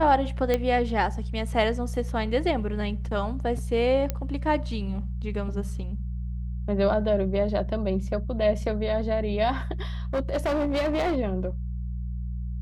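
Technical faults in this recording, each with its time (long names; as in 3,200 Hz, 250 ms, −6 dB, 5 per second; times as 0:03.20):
mains hum 60 Hz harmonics 3 −31 dBFS
0:00.54: click −11 dBFS
0:04.10: click −13 dBFS
0:10.13–0:11.17: clipping −21.5 dBFS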